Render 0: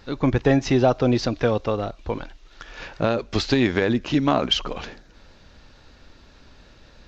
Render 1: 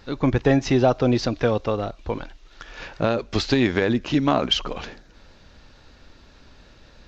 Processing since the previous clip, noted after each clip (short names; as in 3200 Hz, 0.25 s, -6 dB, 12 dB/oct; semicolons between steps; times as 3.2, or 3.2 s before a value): nothing audible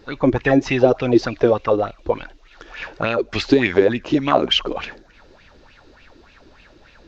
LFO bell 3.4 Hz 320–2700 Hz +16 dB; gain -2.5 dB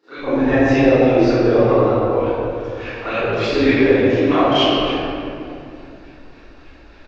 bands offset in time highs, lows 0.14 s, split 190 Hz; reverb RT60 2.6 s, pre-delay 28 ms, DRR -19 dB; gain -16.5 dB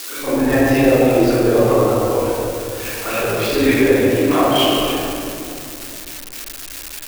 switching spikes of -17 dBFS